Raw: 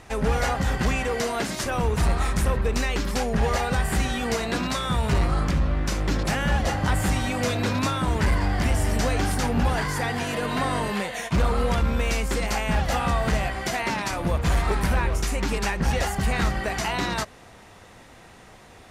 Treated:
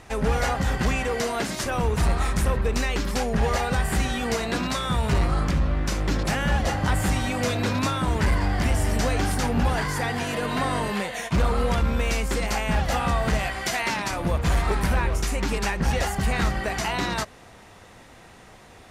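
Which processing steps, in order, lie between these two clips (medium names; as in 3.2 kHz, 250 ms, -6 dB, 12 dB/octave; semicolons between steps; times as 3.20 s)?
13.39–13.98 s: tilt shelf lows -3.5 dB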